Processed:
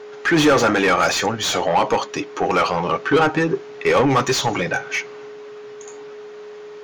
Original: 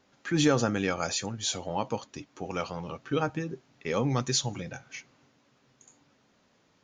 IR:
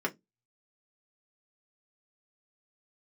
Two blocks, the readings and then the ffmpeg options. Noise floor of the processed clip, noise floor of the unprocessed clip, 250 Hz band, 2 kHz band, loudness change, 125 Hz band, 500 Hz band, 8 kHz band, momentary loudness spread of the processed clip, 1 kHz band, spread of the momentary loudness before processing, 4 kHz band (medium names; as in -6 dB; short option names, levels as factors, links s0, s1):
-37 dBFS, -67 dBFS, +9.5 dB, +16.5 dB, +11.5 dB, +5.5 dB, +13.5 dB, +6.0 dB, 21 LU, +16.0 dB, 15 LU, +10.0 dB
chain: -filter_complex "[0:a]aeval=exprs='val(0)+0.00141*sin(2*PI*420*n/s)':c=same,asplit=2[s0][s1];[s1]highpass=f=720:p=1,volume=20,asoftclip=type=tanh:threshold=0.266[s2];[s0][s2]amix=inputs=2:normalize=0,lowpass=f=2000:p=1,volume=0.501,asplit=2[s3][s4];[1:a]atrim=start_sample=2205[s5];[s4][s5]afir=irnorm=-1:irlink=0,volume=0.141[s6];[s3][s6]amix=inputs=2:normalize=0,volume=1.58"